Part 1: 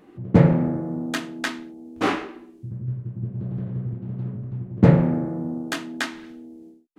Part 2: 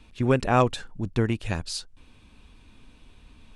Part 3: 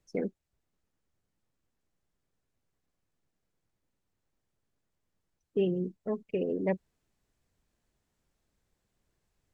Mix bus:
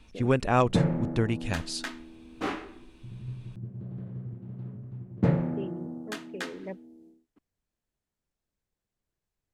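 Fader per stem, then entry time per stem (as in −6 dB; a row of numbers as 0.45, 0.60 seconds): −9.5, −2.5, −9.5 decibels; 0.40, 0.00, 0.00 seconds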